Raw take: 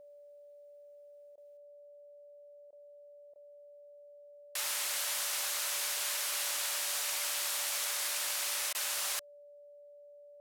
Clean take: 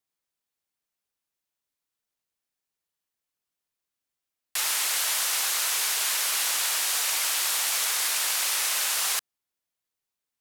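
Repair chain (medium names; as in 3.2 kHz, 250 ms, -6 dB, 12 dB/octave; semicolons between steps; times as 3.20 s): band-stop 580 Hz, Q 30; interpolate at 1.36/2.71/3.34/8.73 s, 16 ms; gain correction +8.5 dB, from 1.57 s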